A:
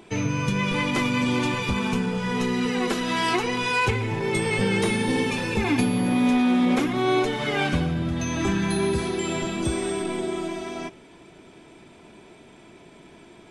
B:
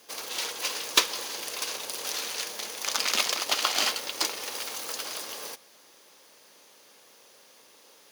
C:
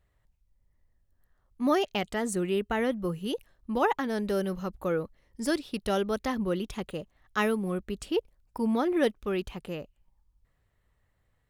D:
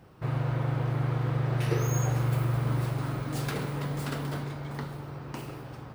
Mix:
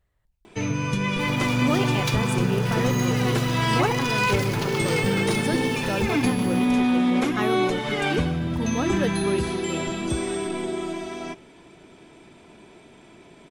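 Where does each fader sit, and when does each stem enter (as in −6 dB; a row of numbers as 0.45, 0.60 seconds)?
−0.5, −10.0, −1.0, +1.0 decibels; 0.45, 1.10, 0.00, 1.05 seconds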